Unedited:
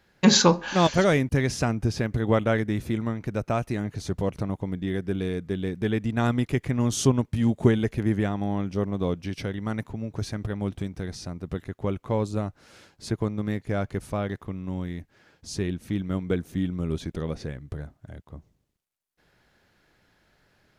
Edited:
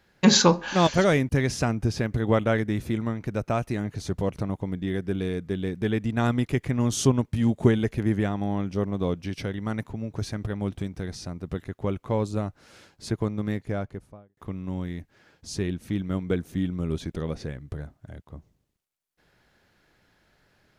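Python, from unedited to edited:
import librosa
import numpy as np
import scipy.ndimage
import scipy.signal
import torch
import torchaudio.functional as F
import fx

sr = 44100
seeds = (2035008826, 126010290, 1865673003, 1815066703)

y = fx.studio_fade_out(x, sr, start_s=13.49, length_s=0.88)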